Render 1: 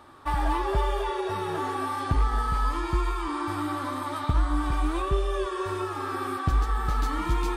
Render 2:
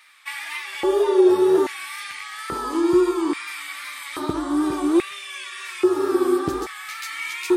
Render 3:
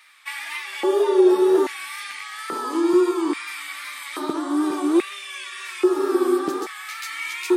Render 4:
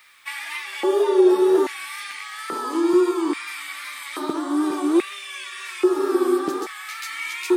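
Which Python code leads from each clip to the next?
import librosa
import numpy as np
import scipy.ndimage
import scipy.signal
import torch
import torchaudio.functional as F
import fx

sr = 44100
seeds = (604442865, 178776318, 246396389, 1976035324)

y1 = fx.bass_treble(x, sr, bass_db=12, treble_db=9)
y1 = fx.wow_flutter(y1, sr, seeds[0], rate_hz=2.1, depth_cents=51.0)
y1 = fx.filter_lfo_highpass(y1, sr, shape='square', hz=0.6, low_hz=360.0, high_hz=2200.0, q=6.2)
y2 = scipy.signal.sosfilt(scipy.signal.butter(4, 220.0, 'highpass', fs=sr, output='sos'), y1)
y3 = fx.quant_dither(y2, sr, seeds[1], bits=10, dither='none')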